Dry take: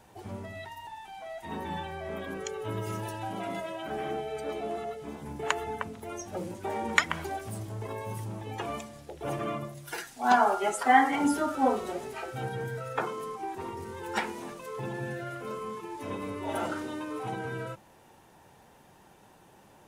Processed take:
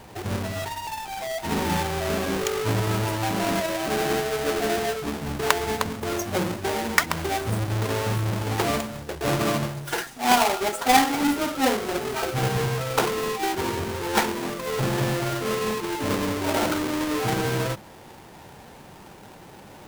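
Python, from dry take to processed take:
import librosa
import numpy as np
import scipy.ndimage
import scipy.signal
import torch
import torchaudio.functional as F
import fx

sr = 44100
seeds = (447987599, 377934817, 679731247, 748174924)

y = fx.halfwave_hold(x, sr)
y = fx.rider(y, sr, range_db=4, speed_s=0.5)
y = y * librosa.db_to_amplitude(3.0)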